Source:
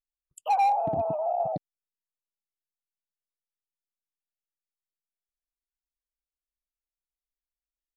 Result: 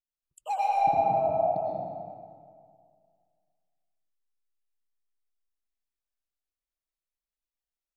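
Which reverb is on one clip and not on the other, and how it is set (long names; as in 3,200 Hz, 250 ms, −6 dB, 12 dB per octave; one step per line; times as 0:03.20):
comb and all-pass reverb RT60 2.1 s, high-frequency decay 0.7×, pre-delay 75 ms, DRR −4.5 dB
level −6.5 dB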